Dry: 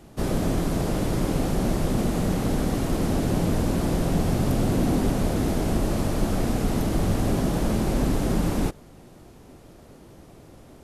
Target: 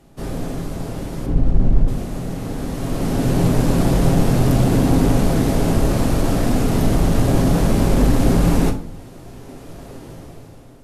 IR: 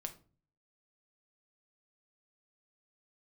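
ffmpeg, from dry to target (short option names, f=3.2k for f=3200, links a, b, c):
-filter_complex "[0:a]asettb=1/sr,asplit=3[a][b][c];[a]atrim=end=1.264[d];[b]atrim=start=1.26:end=1.88,asetpts=PTS-STARTPTS,afade=t=in:d=0.004:c=qsin,afade=t=out:st=0.616:d=0.004:c=qsin,aemphasis=mode=reproduction:type=riaa[e];[c]atrim=start=1.876[f];[d][e]acrossfade=d=0.004:c1=hsin:c2=qsin[g];[g][f]acrossfade=d=0.004:c1=qsin:c2=hsin,dynaudnorm=f=230:g=9:m=16.5dB,asoftclip=type=tanh:threshold=-6dB[h];[1:a]atrim=start_sample=2205,asetrate=33516,aresample=44100[i];[h][i]afir=irnorm=-1:irlink=0,volume=-1dB"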